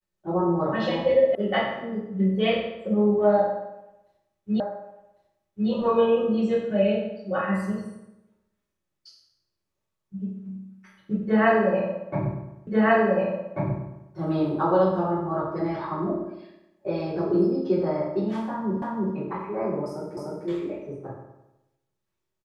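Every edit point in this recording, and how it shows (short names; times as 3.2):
1.35 sound cut off
4.6 repeat of the last 1.1 s
12.67 repeat of the last 1.44 s
18.82 repeat of the last 0.33 s
20.17 repeat of the last 0.3 s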